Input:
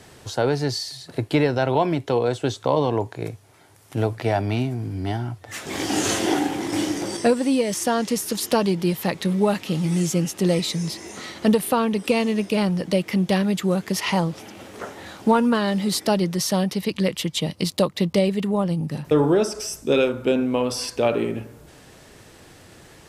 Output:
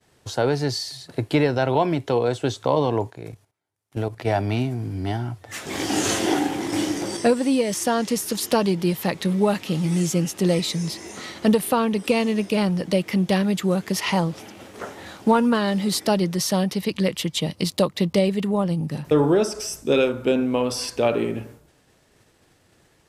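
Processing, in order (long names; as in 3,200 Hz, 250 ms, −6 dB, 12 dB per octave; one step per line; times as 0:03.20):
downward expander −38 dBFS
0:03.10–0:04.27: output level in coarse steps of 12 dB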